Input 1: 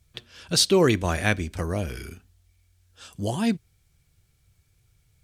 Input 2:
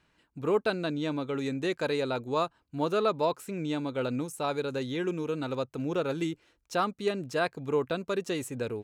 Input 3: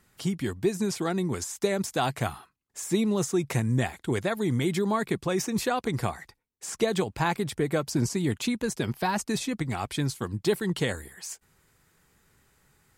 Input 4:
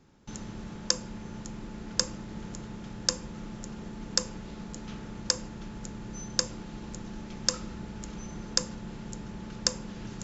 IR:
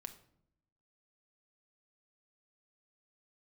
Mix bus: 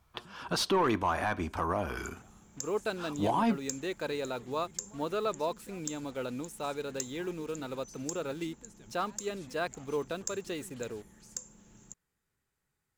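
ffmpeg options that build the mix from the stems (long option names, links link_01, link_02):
-filter_complex "[0:a]equalizer=frequency=125:width_type=o:width=1:gain=-6,equalizer=frequency=500:width_type=o:width=1:gain=-7,equalizer=frequency=1000:width_type=o:width=1:gain=10,equalizer=frequency=2000:width_type=o:width=1:gain=-10,equalizer=frequency=4000:width_type=o:width=1:gain=-7,equalizer=frequency=8000:width_type=o:width=1:gain=-9,asplit=2[link_01][link_02];[link_02]highpass=frequency=720:poles=1,volume=16dB,asoftclip=type=tanh:threshold=-9.5dB[link_03];[link_01][link_03]amix=inputs=2:normalize=0,lowpass=frequency=2200:poles=1,volume=-6dB,volume=0dB,asplit=2[link_04][link_05];[1:a]lowshelf=frequency=97:gain=-11,acrusher=bits=7:mix=0:aa=0.5,adelay=2200,volume=-5dB[link_06];[2:a]alimiter=limit=-21.5dB:level=0:latency=1,acompressor=threshold=-33dB:ratio=6,volume=-19dB[link_07];[3:a]aexciter=amount=12.1:drive=8:freq=7200,adelay=1700,volume=-18.5dB[link_08];[link_05]apad=whole_len=572006[link_09];[link_07][link_09]sidechaincompress=threshold=-39dB:ratio=8:attack=21:release=435[link_10];[link_04][link_06][link_10][link_08]amix=inputs=4:normalize=0,alimiter=limit=-19.5dB:level=0:latency=1:release=171"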